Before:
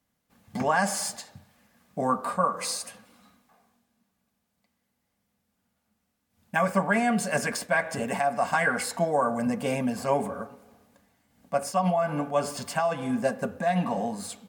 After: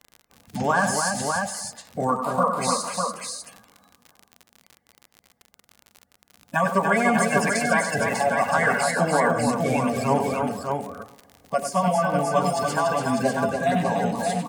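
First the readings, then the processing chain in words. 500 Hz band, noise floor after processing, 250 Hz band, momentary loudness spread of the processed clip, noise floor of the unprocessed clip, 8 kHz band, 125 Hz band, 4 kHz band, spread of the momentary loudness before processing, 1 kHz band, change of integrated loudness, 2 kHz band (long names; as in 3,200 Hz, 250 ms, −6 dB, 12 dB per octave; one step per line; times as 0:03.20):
+4.5 dB, −71 dBFS, +4.0 dB, 9 LU, −78 dBFS, +5.0 dB, +5.5 dB, +4.5 dB, 8 LU, +5.5 dB, +4.0 dB, +5.0 dB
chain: spectral magnitudes quantised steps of 30 dB
multi-tap delay 96/289/597 ms −8.5/−5/−4.5 dB
surface crackle 62 per second −35 dBFS
level +3 dB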